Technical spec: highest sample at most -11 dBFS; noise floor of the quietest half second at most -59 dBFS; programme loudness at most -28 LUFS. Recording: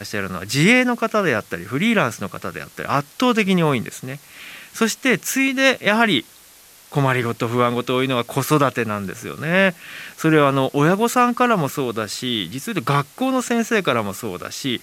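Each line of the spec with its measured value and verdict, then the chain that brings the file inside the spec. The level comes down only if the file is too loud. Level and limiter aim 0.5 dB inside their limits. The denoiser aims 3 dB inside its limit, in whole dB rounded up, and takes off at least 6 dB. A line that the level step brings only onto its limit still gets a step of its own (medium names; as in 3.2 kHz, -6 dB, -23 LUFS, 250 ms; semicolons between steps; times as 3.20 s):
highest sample -2.5 dBFS: fail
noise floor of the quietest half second -47 dBFS: fail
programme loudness -19.5 LUFS: fail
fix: noise reduction 6 dB, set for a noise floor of -47 dBFS; trim -9 dB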